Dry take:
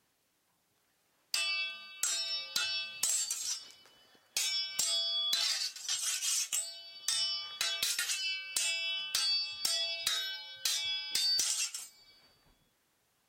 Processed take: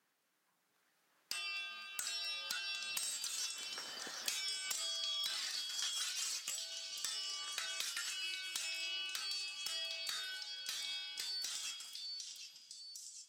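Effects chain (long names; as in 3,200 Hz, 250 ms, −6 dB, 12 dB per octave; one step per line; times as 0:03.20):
gain on one half-wave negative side −3 dB
source passing by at 0:04.40, 7 m/s, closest 2.6 metres
high-pass filter 150 Hz 24 dB per octave
parametric band 1,500 Hz +6.5 dB 1.2 octaves
downward compressor 10 to 1, threshold −55 dBFS, peak gain reduction 24 dB
on a send: echo through a band-pass that steps 756 ms, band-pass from 4,100 Hz, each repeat 0.7 octaves, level −3 dB
on the sum: feedback echo with a swinging delay time 250 ms, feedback 62%, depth 159 cents, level −19 dB
level +16 dB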